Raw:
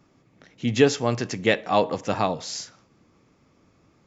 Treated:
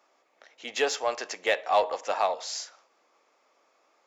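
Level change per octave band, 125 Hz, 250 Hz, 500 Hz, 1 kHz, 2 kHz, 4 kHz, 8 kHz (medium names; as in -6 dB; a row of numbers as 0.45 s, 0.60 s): under -30 dB, -21.5 dB, -5.0 dB, -0.5 dB, -3.0 dB, -3.0 dB, no reading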